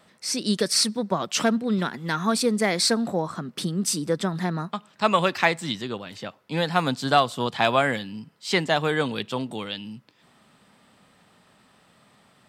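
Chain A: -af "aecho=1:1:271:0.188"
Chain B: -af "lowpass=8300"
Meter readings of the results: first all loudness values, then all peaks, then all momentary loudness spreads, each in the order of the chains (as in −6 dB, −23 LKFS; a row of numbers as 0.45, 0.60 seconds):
−24.5, −24.5 LKFS; −3.5, −3.5 dBFS; 12, 12 LU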